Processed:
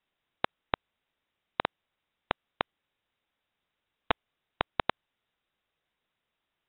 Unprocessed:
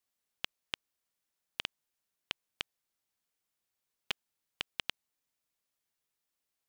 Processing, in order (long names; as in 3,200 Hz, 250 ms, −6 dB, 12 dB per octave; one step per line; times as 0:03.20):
voice inversion scrambler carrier 3,800 Hz
level +9 dB